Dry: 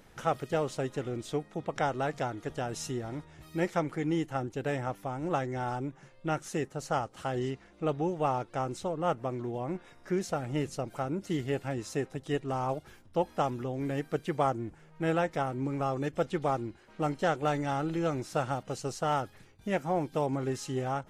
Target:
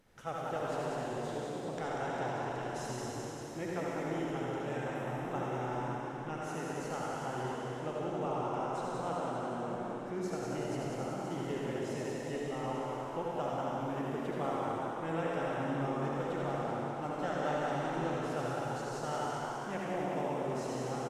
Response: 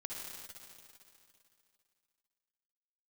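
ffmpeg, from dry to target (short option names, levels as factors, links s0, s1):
-filter_complex "[0:a]asplit=8[s0][s1][s2][s3][s4][s5][s6][s7];[s1]adelay=190,afreqshift=100,volume=0.501[s8];[s2]adelay=380,afreqshift=200,volume=0.269[s9];[s3]adelay=570,afreqshift=300,volume=0.146[s10];[s4]adelay=760,afreqshift=400,volume=0.0785[s11];[s5]adelay=950,afreqshift=500,volume=0.0427[s12];[s6]adelay=1140,afreqshift=600,volume=0.0229[s13];[s7]adelay=1330,afreqshift=700,volume=0.0124[s14];[s0][s8][s9][s10][s11][s12][s13][s14]amix=inputs=8:normalize=0[s15];[1:a]atrim=start_sample=2205,asetrate=34839,aresample=44100[s16];[s15][s16]afir=irnorm=-1:irlink=0,volume=0.473"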